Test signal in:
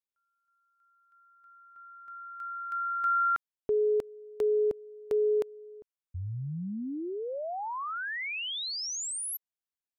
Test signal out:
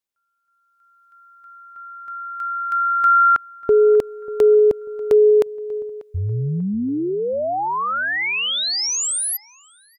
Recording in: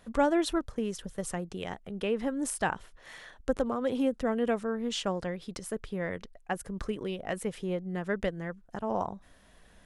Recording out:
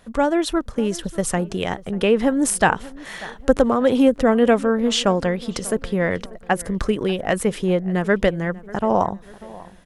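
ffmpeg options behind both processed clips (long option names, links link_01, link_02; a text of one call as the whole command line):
ffmpeg -i in.wav -filter_complex "[0:a]dynaudnorm=framelen=220:gausssize=7:maxgain=7dB,asplit=2[link_01][link_02];[link_02]adelay=591,lowpass=frequency=2400:poles=1,volume=-20dB,asplit=2[link_03][link_04];[link_04]adelay=591,lowpass=frequency=2400:poles=1,volume=0.46,asplit=2[link_05][link_06];[link_06]adelay=591,lowpass=frequency=2400:poles=1,volume=0.46[link_07];[link_03][link_05][link_07]amix=inputs=3:normalize=0[link_08];[link_01][link_08]amix=inputs=2:normalize=0,volume=6dB" out.wav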